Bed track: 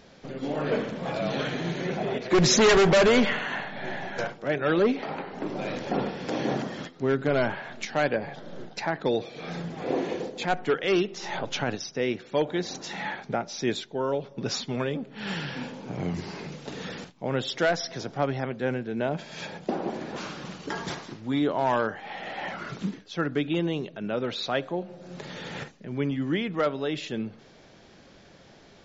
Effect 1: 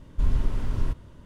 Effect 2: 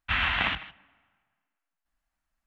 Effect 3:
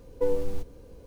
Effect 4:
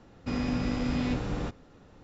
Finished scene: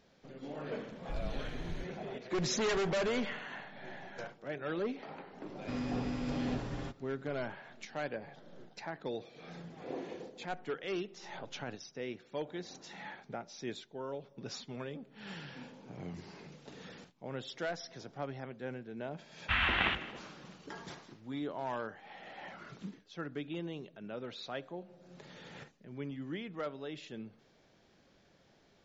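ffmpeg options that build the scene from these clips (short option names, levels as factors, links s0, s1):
-filter_complex "[0:a]volume=0.211[s0];[4:a]aecho=1:1:7.4:0.64[s1];[2:a]aecho=1:1:232:0.0944[s2];[1:a]atrim=end=1.25,asetpts=PTS-STARTPTS,volume=0.141,afade=t=in:d=0.004:c=hsin,afade=t=out:st=1.246:d=0.004:c=hsin,adelay=910[s3];[s1]atrim=end=2.03,asetpts=PTS-STARTPTS,volume=0.335,afade=t=in:d=0.004:c=hsin,afade=t=out:st=2.026:d=0.004:c=hsin,adelay=238581S[s4];[s2]atrim=end=2.46,asetpts=PTS-STARTPTS,volume=0.631,afade=t=in:d=0.004:c=hsin,afade=t=out:st=2.456:d=0.004:c=hsin,adelay=855540S[s5];[s0][s3][s4][s5]amix=inputs=4:normalize=0"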